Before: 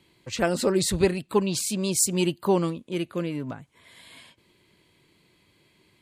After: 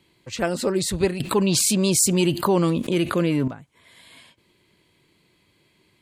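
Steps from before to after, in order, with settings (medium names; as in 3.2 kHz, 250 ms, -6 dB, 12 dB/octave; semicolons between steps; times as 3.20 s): 1.20–3.48 s: level flattener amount 70%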